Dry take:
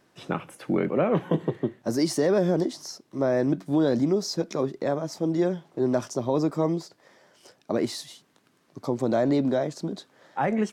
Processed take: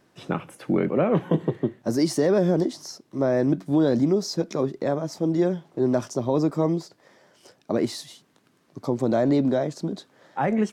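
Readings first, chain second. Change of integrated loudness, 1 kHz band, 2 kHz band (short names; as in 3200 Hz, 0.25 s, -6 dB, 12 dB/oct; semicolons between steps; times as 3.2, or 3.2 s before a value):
+2.0 dB, +0.5 dB, 0.0 dB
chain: low shelf 420 Hz +3.5 dB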